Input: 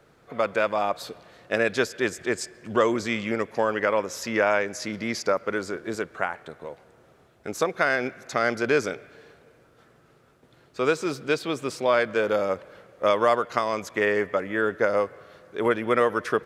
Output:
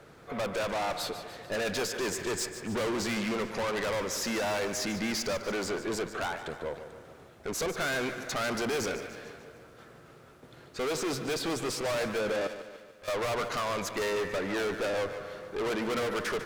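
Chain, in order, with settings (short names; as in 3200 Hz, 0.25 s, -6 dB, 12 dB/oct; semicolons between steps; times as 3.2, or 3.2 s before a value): tube stage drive 35 dB, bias 0.35; 12.47–13.08 passive tone stack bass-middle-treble 5-5-5; lo-fi delay 0.147 s, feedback 55%, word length 12-bit, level -12 dB; gain +6 dB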